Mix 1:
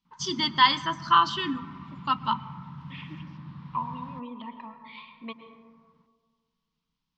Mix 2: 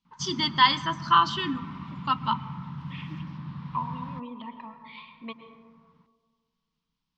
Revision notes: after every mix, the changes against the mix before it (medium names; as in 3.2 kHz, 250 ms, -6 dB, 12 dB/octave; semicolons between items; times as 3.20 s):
background +4.5 dB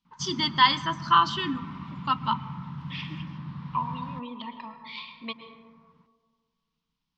second voice: remove distance through air 410 m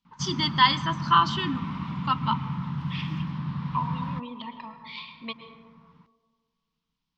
background +6.5 dB